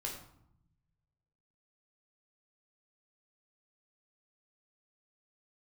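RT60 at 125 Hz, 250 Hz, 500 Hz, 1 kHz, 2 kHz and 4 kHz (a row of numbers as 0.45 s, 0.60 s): 1.9 s, 1.3 s, 0.70 s, 0.75 s, 0.55 s, 0.45 s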